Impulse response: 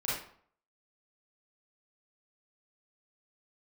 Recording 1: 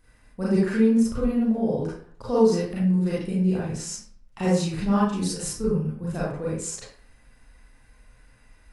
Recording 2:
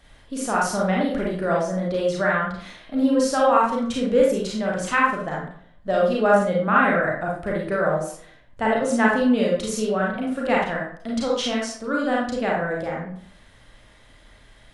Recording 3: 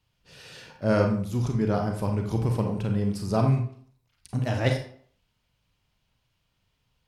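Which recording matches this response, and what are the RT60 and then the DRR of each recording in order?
1; 0.55 s, 0.55 s, 0.55 s; -9.0 dB, -4.0 dB, 2.5 dB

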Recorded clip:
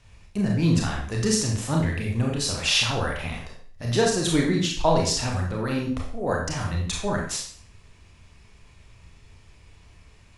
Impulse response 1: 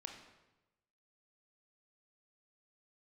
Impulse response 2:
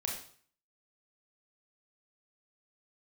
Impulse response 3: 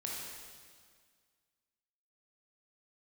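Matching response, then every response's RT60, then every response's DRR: 2; 1.0 s, 0.50 s, 1.8 s; 3.0 dB, -1.0 dB, -3.5 dB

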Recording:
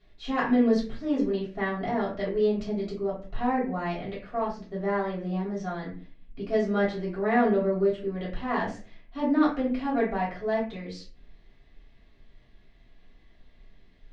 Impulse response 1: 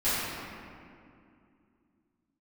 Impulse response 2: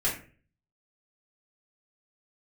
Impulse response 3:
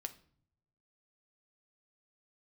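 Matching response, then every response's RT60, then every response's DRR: 2; 2.5 s, 0.40 s, no single decay rate; -16.0 dB, -8.5 dB, 7.5 dB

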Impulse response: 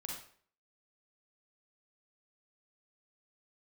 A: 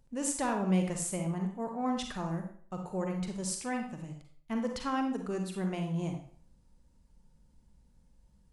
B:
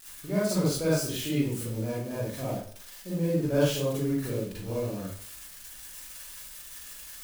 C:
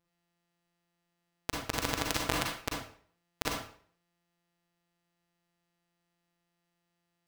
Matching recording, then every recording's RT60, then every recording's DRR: C; 0.50 s, 0.50 s, 0.50 s; 3.5 dB, -9.0 dB, -2.0 dB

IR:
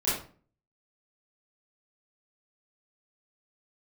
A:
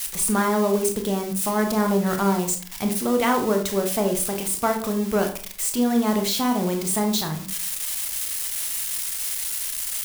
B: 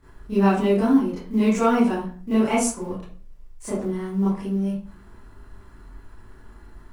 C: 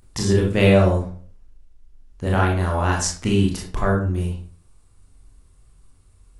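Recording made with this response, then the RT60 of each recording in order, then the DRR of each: B; 0.40 s, 0.40 s, 0.40 s; 4.0 dB, -11.5 dB, -2.5 dB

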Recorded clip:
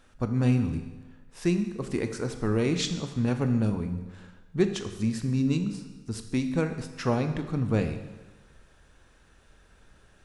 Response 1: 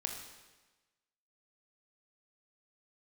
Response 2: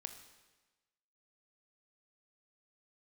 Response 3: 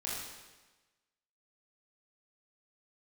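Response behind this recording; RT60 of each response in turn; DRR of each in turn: 2; 1.2 s, 1.2 s, 1.2 s; 2.0 dB, 7.0 dB, -7.0 dB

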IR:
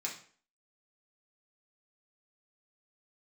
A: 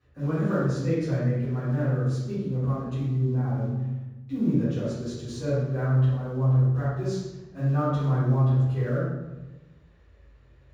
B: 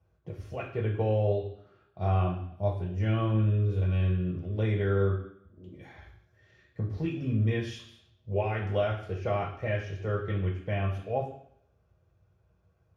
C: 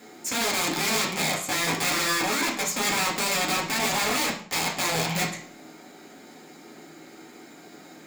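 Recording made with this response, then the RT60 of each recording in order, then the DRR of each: C; 1.1 s, 0.65 s, 0.45 s; -14.5 dB, -1.0 dB, -3.0 dB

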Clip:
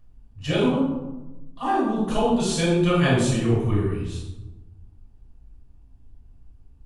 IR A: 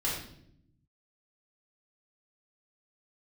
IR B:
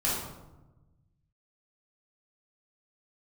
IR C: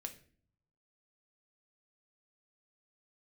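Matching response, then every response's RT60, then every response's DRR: B; 0.70 s, 1.0 s, 0.50 s; -6.5 dB, -8.0 dB, 5.0 dB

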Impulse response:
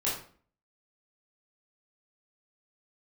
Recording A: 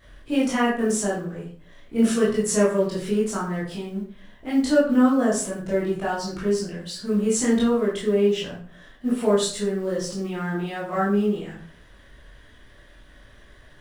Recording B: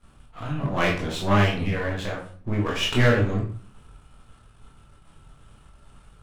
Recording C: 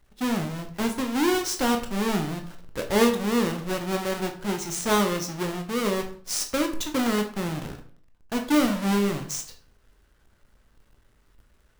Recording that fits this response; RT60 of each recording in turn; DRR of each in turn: A; 0.45 s, 0.45 s, 0.45 s; -7.5 dB, -3.0 dB, 4.0 dB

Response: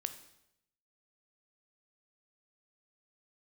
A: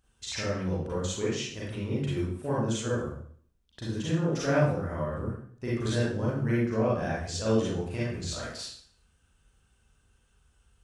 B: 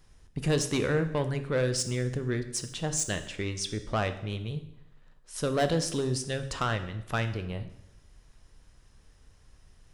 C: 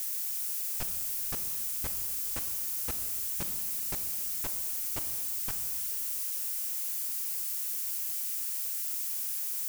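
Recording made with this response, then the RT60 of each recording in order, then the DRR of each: B; 0.55 s, 0.80 s, 2.0 s; -7.5 dB, 9.0 dB, 8.0 dB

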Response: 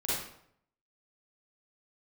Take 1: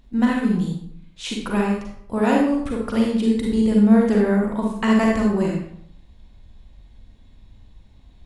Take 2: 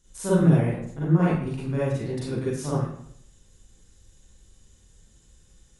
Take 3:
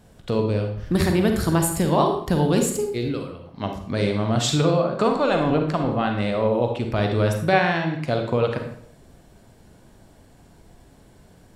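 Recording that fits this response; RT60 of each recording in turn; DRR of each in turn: 2; 0.70 s, 0.70 s, 0.70 s; -1.5 dB, -9.5 dB, 3.5 dB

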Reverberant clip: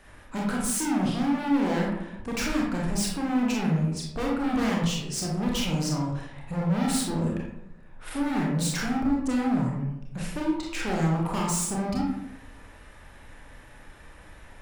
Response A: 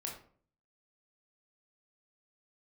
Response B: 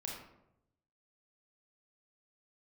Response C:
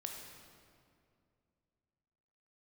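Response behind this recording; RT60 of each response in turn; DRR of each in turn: B; 0.50 s, 0.85 s, 2.4 s; -1.0 dB, -2.5 dB, 1.0 dB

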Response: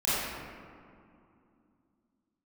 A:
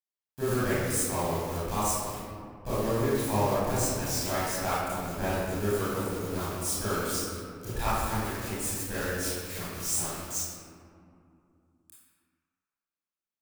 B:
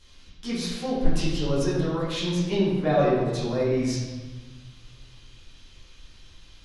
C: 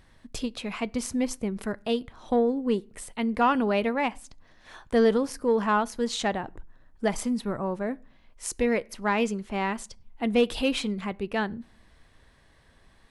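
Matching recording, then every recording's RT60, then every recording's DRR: A; 2.5 s, 1.3 s, no single decay rate; -12.0 dB, -11.0 dB, 19.5 dB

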